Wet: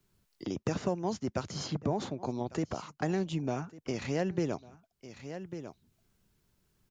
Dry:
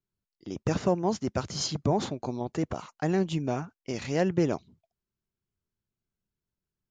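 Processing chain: delay 1148 ms -23 dB; three bands compressed up and down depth 70%; trim -4.5 dB

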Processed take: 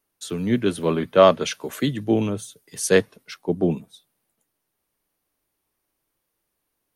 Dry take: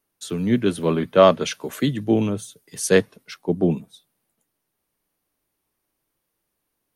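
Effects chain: peaking EQ 180 Hz -2.5 dB 1.5 oct

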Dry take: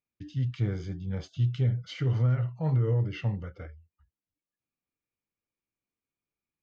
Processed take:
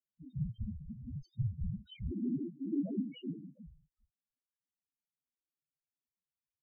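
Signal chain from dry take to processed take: whisper effect; 2.10–3.63 s: frequency shift +140 Hz; loudest bins only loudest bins 2; trim -4 dB

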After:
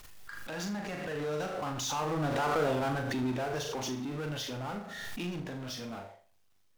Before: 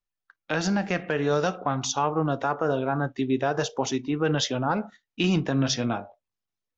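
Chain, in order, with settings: Doppler pass-by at 2.62 s, 8 m/s, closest 1.8 m; power-law waveshaper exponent 0.5; flutter echo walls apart 6.8 m, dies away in 0.38 s; swell ahead of each attack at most 26 dB/s; trim -8.5 dB

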